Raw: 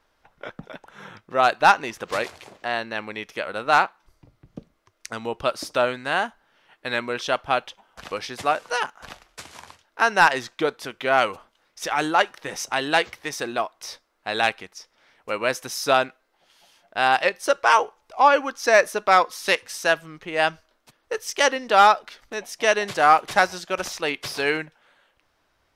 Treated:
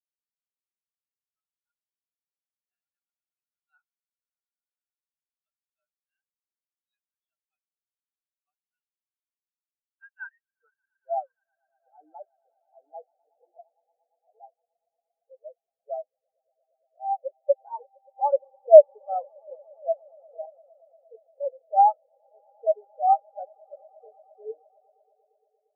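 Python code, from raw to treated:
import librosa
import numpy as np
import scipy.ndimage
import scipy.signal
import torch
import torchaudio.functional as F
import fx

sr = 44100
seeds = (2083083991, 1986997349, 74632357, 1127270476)

p1 = fx.filter_sweep_bandpass(x, sr, from_hz=3900.0, to_hz=530.0, start_s=9.7, end_s=11.5, q=1.4)
p2 = fx.echo_swell(p1, sr, ms=116, loudest=8, wet_db=-13)
p3 = np.clip(p2, -10.0 ** (-25.0 / 20.0), 10.0 ** (-25.0 / 20.0))
p4 = p2 + (p3 * librosa.db_to_amplitude(-8.0))
p5 = fx.comb_fb(p4, sr, f0_hz=480.0, decay_s=0.25, harmonics='all', damping=0.0, mix_pct=70, at=(1.38, 2.69), fade=0.02)
p6 = fx.spectral_expand(p5, sr, expansion=4.0)
y = p6 * librosa.db_to_amplitude(5.5)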